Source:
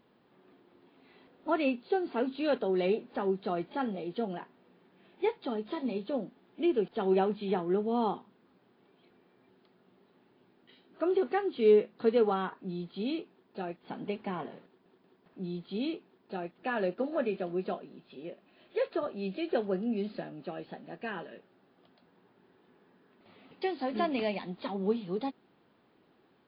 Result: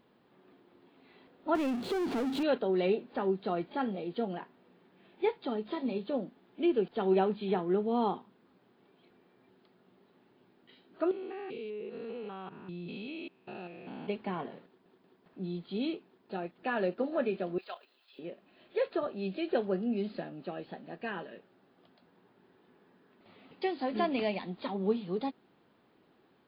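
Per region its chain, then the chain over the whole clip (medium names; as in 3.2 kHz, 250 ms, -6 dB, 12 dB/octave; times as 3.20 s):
1.55–2.43 s: bass shelf 390 Hz +10.5 dB + compression, threshold -33 dBFS + power-law waveshaper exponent 0.5
11.11–14.08 s: spectrogram pixelated in time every 200 ms + peaking EQ 2.6 kHz +12.5 dB 0.27 oct + compression 12:1, threshold -37 dBFS
17.58–18.19 s: high-pass 750 Hz + tilt EQ +3.5 dB/octave + level held to a coarse grid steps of 10 dB
whole clip: none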